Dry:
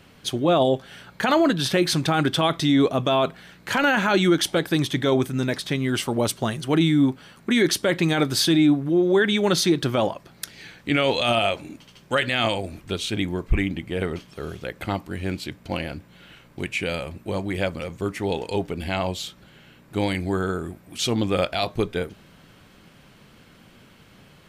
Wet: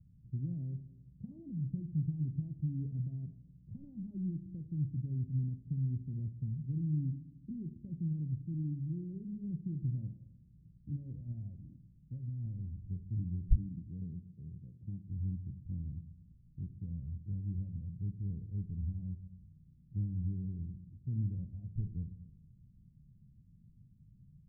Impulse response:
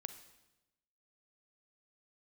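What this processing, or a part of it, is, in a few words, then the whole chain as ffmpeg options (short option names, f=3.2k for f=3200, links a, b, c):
club heard from the street: -filter_complex "[0:a]alimiter=limit=-13.5dB:level=0:latency=1:release=153,lowpass=f=150:w=0.5412,lowpass=f=150:w=1.3066[a];[1:a]atrim=start_sample=2205[b];[a][b]afir=irnorm=-1:irlink=0,asplit=3[c][d][e];[c]afade=t=out:st=13.55:d=0.02[f];[d]highpass=130,afade=t=in:st=13.55:d=0.02,afade=t=out:st=15.08:d=0.02[g];[e]afade=t=in:st=15.08:d=0.02[h];[f][g][h]amix=inputs=3:normalize=0,volume=1dB"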